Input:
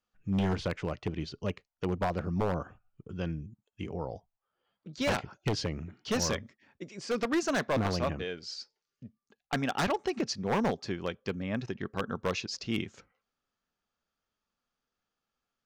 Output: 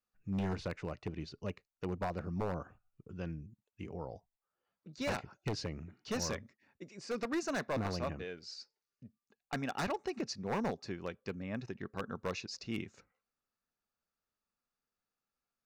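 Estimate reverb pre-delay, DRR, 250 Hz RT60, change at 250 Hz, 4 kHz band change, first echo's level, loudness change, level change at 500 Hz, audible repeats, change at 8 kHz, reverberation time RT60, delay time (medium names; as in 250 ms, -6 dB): no reverb, no reverb, no reverb, -6.5 dB, -7.5 dB, no echo, -6.5 dB, -6.5 dB, no echo, -6.5 dB, no reverb, no echo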